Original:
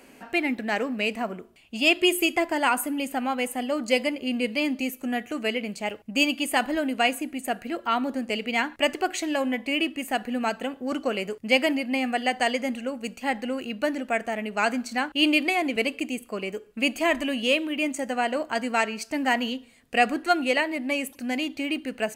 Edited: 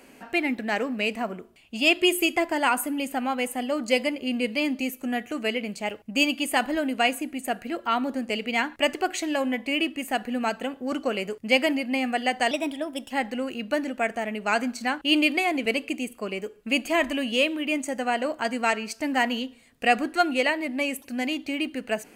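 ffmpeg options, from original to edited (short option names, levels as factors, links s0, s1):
-filter_complex "[0:a]asplit=3[s0][s1][s2];[s0]atrim=end=12.514[s3];[s1]atrim=start=12.51:end=13.21,asetpts=PTS-STARTPTS,asetrate=52038,aresample=44100,atrim=end_sample=26161,asetpts=PTS-STARTPTS[s4];[s2]atrim=start=13.206[s5];[s3][s4]acrossfade=d=0.004:c1=hsin:c2=hsin[s6];[s6][s5]acrossfade=d=0.004:c1=hsin:c2=hsin"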